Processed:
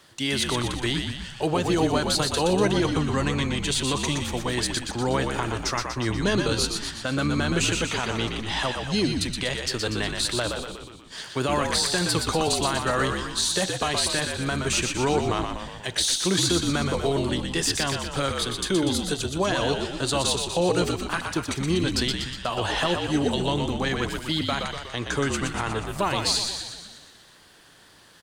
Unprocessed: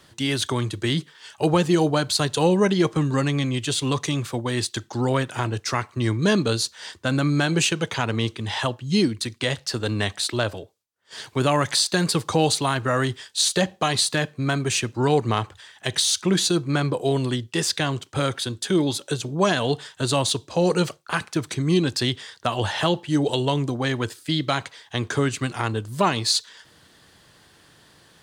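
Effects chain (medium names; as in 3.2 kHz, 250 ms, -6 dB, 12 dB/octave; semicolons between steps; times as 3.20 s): bass shelf 270 Hz -7 dB; peak limiter -14 dBFS, peak gain reduction 6 dB; frequency-shifting echo 121 ms, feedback 58%, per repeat -57 Hz, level -5 dB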